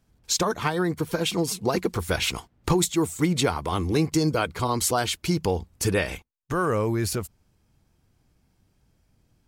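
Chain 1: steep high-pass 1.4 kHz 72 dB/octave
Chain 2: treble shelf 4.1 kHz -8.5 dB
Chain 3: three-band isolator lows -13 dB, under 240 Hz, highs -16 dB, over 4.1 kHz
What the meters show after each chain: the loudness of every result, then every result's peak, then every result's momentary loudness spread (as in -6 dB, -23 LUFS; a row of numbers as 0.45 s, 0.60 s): -30.5 LUFS, -26.5 LUFS, -28.0 LUFS; -11.0 dBFS, -11.0 dBFS, -12.0 dBFS; 12 LU, 7 LU, 5 LU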